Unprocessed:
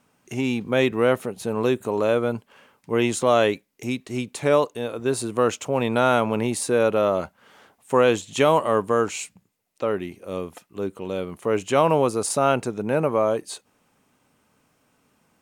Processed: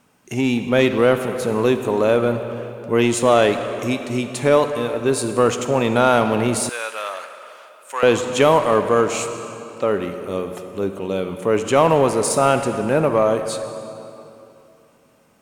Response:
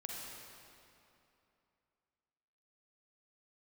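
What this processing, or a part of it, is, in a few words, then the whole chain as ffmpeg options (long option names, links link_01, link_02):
saturated reverb return: -filter_complex "[0:a]asplit=2[link_01][link_02];[1:a]atrim=start_sample=2205[link_03];[link_02][link_03]afir=irnorm=-1:irlink=0,asoftclip=type=tanh:threshold=-20dB,volume=-1dB[link_04];[link_01][link_04]amix=inputs=2:normalize=0,asettb=1/sr,asplit=3[link_05][link_06][link_07];[link_05]atrim=end=6.694[link_08];[link_06]atrim=start=6.69:end=8.03,asetpts=PTS-STARTPTS,afade=type=in:duration=0.004:curve=qsin,afade=type=out:start_time=1.336:duration=0.004:curve=qsin,highpass=1400[link_09];[link_07]atrim=start=8.026[link_10];[link_08][link_09]acrossfade=duration=0.004:curve1=hsin:curve2=qsin[link_11];[link_11][link_10]acrossfade=duration=0.004:curve1=qsin:curve2=hsin,volume=1.5dB"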